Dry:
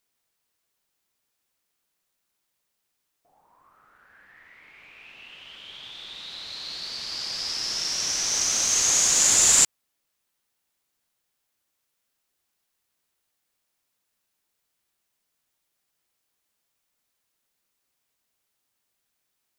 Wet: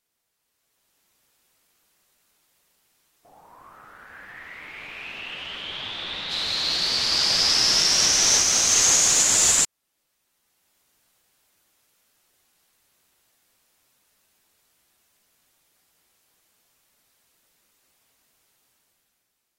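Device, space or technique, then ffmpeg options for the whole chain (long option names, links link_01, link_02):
low-bitrate web radio: -filter_complex "[0:a]asettb=1/sr,asplit=3[link_01][link_02][link_03];[link_01]atrim=end=4.874[link_04];[link_02]atrim=start=4.87:end=6.31,asetpts=PTS-STARTPTS,afade=type=in:duration=0.004:curve=qsin,afade=type=out:start_time=1.436:duration=0.004:curve=qsin,acrossover=split=3700[link_05][link_06];[link_06]acompressor=threshold=-57dB:ratio=4:attack=1:release=60[link_07];[link_05][link_07]amix=inputs=2:normalize=0[link_08];[link_03]atrim=start=6.306[link_09];[link_04][link_08]acrossfade=duration=0.004:curve1=hsin:curve2=qsin[link_10];[link_10][link_09]acrossfade=duration=0.004:curve1=qsin:curve2=hsin,dynaudnorm=framelen=180:gausssize=9:maxgain=11dB,alimiter=limit=-8dB:level=0:latency=1:release=372" -ar 44100 -c:a aac -b:a 48k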